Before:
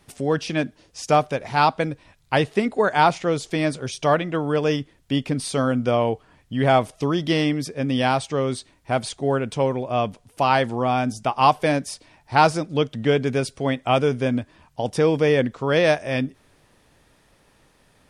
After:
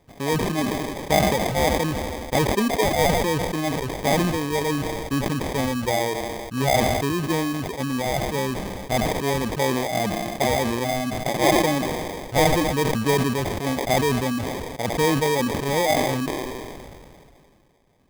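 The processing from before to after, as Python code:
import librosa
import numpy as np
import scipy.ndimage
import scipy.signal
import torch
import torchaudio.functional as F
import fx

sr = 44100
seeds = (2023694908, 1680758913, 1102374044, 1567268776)

y = fx.env_lowpass_down(x, sr, base_hz=1400.0, full_db=-17.5)
y = fx.dereverb_blind(y, sr, rt60_s=1.3)
y = fx.echo_wet_highpass(y, sr, ms=81, feedback_pct=64, hz=1500.0, wet_db=-10.5)
y = fx.sample_hold(y, sr, seeds[0], rate_hz=1400.0, jitter_pct=0)
y = fx.sustainer(y, sr, db_per_s=25.0)
y = F.gain(torch.from_numpy(y), -2.0).numpy()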